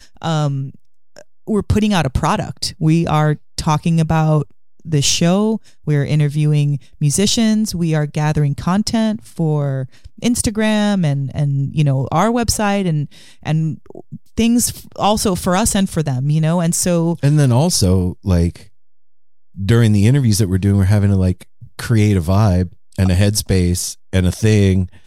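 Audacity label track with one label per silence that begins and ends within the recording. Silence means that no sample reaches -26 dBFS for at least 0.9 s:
18.560000	19.580000	silence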